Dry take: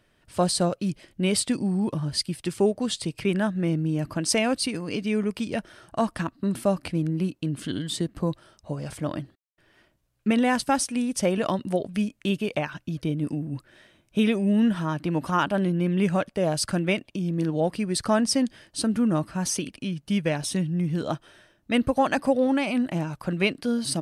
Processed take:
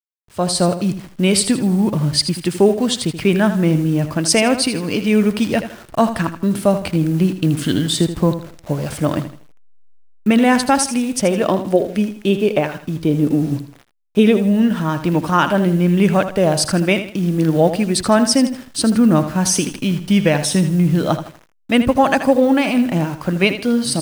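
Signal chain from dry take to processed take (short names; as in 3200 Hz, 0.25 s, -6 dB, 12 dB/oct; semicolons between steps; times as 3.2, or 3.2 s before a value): level-crossing sampler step -44.5 dBFS; 11.41–14.37 dynamic EQ 410 Hz, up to +8 dB, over -38 dBFS, Q 1.1; AGC gain up to 15 dB; lo-fi delay 80 ms, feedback 35%, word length 7-bit, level -10.5 dB; gain -1.5 dB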